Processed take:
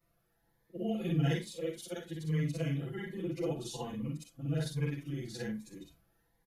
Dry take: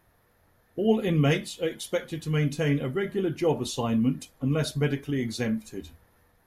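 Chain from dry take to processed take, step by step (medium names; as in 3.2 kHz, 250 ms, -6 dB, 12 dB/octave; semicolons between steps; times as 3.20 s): short-time spectra conjugated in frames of 129 ms; comb 6 ms, depth 91%; Shepard-style phaser rising 1.2 Hz; trim -8.5 dB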